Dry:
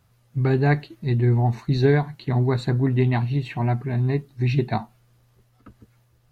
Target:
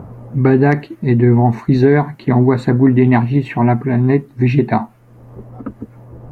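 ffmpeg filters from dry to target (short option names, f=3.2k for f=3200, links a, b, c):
-filter_complex "[0:a]equalizer=f=250:t=o:w=1:g=10,equalizer=f=500:t=o:w=1:g=5,equalizer=f=1k:t=o:w=1:g=6,equalizer=f=2k:t=o:w=1:g=6,equalizer=f=4k:t=o:w=1:g=-6,acrossover=split=930[a][b];[a]acompressor=mode=upward:threshold=-20dB:ratio=2.5[c];[b]volume=11dB,asoftclip=hard,volume=-11dB[d];[c][d]amix=inputs=2:normalize=0,alimiter=level_in=5dB:limit=-1dB:release=50:level=0:latency=1,volume=-1dB"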